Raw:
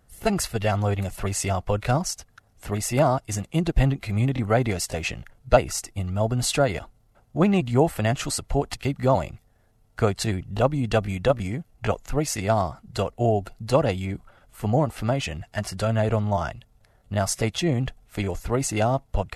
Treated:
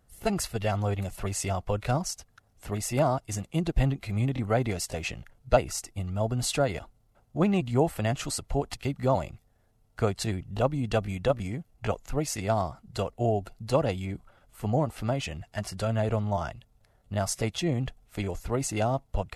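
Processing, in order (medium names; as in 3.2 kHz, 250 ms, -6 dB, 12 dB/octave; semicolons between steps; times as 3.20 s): peaking EQ 1.7 kHz -2 dB; trim -4.5 dB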